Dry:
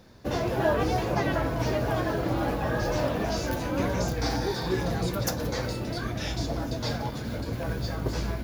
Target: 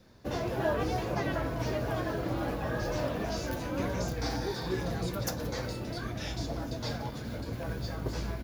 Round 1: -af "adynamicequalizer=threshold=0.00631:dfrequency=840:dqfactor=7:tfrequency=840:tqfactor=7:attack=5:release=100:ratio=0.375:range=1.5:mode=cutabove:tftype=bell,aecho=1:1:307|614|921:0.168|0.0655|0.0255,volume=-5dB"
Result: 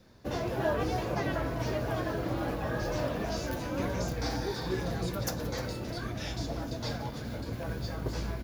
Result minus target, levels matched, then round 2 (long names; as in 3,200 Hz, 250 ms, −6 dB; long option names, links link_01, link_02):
echo-to-direct +11 dB
-af "adynamicequalizer=threshold=0.00631:dfrequency=840:dqfactor=7:tfrequency=840:tqfactor=7:attack=5:release=100:ratio=0.375:range=1.5:mode=cutabove:tftype=bell,aecho=1:1:307|614:0.0473|0.0185,volume=-5dB"